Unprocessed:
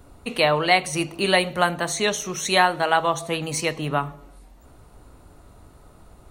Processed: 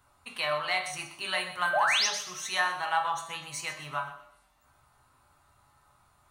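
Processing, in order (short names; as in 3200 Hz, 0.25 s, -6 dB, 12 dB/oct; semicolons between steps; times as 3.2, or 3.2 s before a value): resonant low shelf 690 Hz -12.5 dB, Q 1.5; painted sound rise, 1.73–2.07, 560–6800 Hz -16 dBFS; resonator 120 Hz, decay 0.48 s, harmonics odd, mix 80%; in parallel at -12 dB: soft clip -29 dBFS, distortion -10 dB; on the sum: thinning echo 0.125 s, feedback 37%, high-pass 1000 Hz, level -12 dB; on a send at -5 dB: reverb RT60 0.55 s, pre-delay 3 ms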